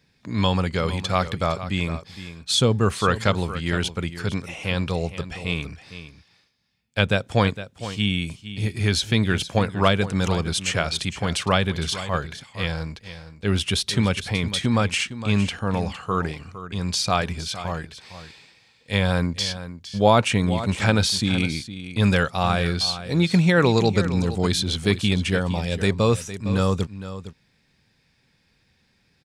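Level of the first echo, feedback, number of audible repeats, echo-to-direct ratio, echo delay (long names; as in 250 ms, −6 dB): −13.0 dB, repeats not evenly spaced, 1, −13.0 dB, 460 ms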